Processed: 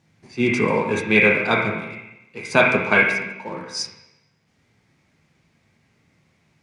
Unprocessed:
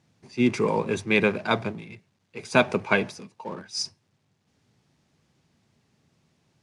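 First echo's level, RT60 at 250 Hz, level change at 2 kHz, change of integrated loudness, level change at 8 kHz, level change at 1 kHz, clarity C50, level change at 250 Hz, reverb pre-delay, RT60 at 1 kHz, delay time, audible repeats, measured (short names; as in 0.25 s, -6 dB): none, 0.95 s, +9.5 dB, +6.0 dB, +2.0 dB, +5.0 dB, -0.5 dB, +2.5 dB, 15 ms, 0.90 s, none, none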